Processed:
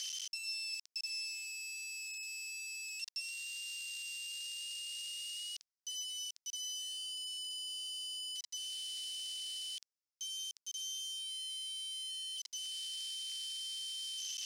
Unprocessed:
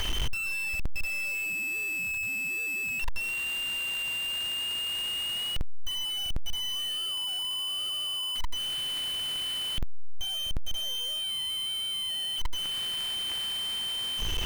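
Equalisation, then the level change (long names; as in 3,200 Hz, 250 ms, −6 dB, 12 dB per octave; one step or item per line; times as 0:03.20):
four-pole ladder band-pass 5,800 Hz, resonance 60%
+8.5 dB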